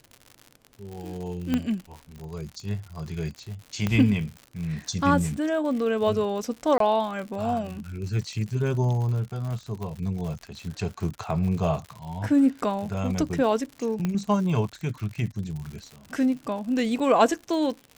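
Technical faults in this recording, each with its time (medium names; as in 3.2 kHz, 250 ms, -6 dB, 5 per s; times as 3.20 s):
crackle 97 per s -34 dBFS
1.54 s: pop -12 dBFS
3.87 s: pop -12 dBFS
6.78–6.80 s: dropout 23 ms
9.83 s: pop
14.05 s: pop -15 dBFS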